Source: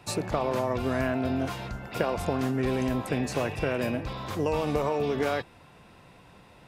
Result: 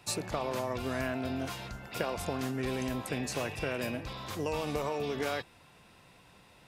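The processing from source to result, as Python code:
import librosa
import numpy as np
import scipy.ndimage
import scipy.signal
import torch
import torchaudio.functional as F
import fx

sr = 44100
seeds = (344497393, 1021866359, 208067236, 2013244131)

y = fx.high_shelf(x, sr, hz=2200.0, db=8.5)
y = F.gain(torch.from_numpy(y), -7.0).numpy()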